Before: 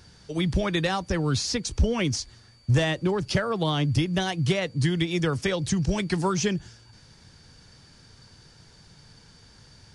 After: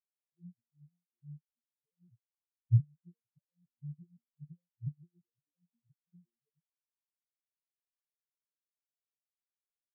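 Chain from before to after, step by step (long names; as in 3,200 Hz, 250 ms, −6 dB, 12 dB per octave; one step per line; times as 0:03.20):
vocoder with an arpeggio as carrier major triad, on A#2, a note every 173 ms
every bin expanded away from the loudest bin 4 to 1
level −5 dB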